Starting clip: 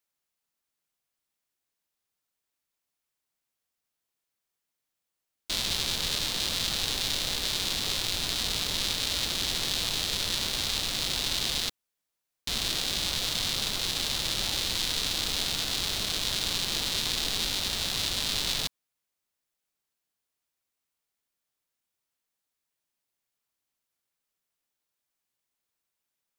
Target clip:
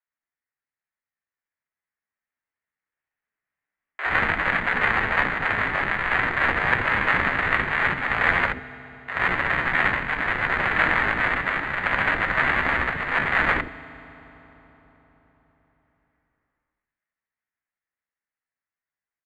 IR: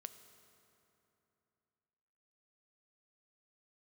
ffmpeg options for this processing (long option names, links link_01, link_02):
-filter_complex "[0:a]agate=range=-14dB:threshold=-27dB:ratio=16:detection=peak,dynaudnorm=framelen=540:gausssize=17:maxgain=10.5dB,asetrate=60417,aresample=44100,acrusher=samples=10:mix=1:aa=0.000001,lowpass=frequency=1500:width_type=q:width=3.7,asetrate=55563,aresample=44100,atempo=0.793701,acrossover=split=410[link_01][link_02];[link_01]adelay=70[link_03];[link_03][link_02]amix=inputs=2:normalize=0,asplit=2[link_04][link_05];[1:a]atrim=start_sample=2205,asetrate=28224,aresample=44100[link_06];[link_05][link_06]afir=irnorm=-1:irlink=0,volume=4dB[link_07];[link_04][link_07]amix=inputs=2:normalize=0,volume=-6dB"